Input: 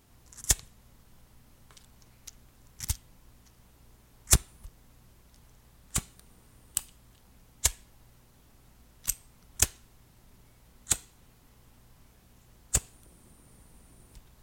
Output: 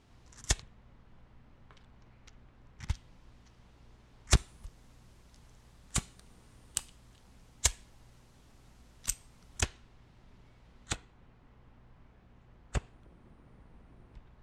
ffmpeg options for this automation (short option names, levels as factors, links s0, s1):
-af "asetnsamples=n=441:p=0,asendcmd='0.62 lowpass f 2500;2.94 lowpass f 4500;4.37 lowpass f 7900;9.61 lowpass f 3700;10.95 lowpass f 2200',lowpass=4900"